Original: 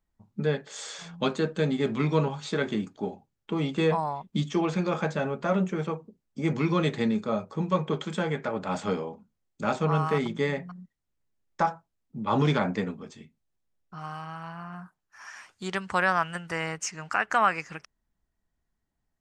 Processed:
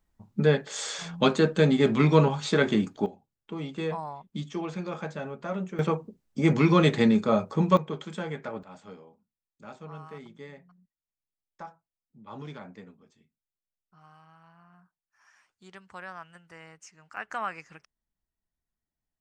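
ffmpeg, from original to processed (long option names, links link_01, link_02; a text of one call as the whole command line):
ffmpeg -i in.wav -af "asetnsamples=nb_out_samples=441:pad=0,asendcmd='3.06 volume volume -7dB;5.79 volume volume 5dB;7.77 volume volume -5.5dB;8.63 volume volume -17.5dB;17.17 volume volume -10dB',volume=5dB" out.wav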